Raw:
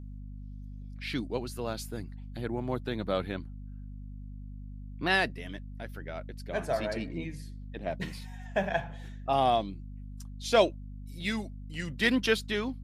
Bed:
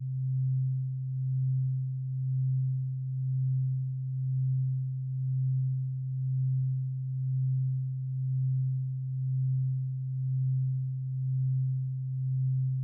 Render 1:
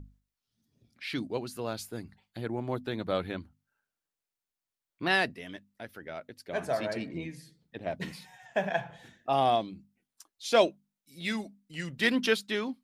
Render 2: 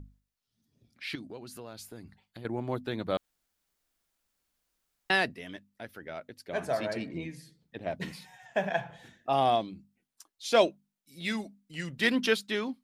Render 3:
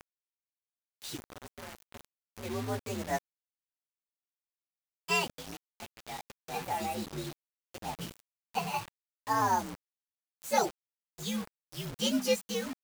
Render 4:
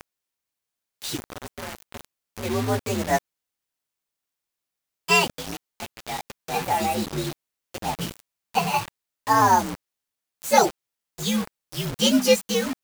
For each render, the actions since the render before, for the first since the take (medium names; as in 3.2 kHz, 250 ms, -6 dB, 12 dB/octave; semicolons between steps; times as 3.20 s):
hum notches 50/100/150/200/250 Hz
1.15–2.45 s: compression 3:1, threshold -42 dBFS; 3.17–5.10 s: room tone
frequency axis rescaled in octaves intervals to 124%; bit crusher 7-bit
trim +10.5 dB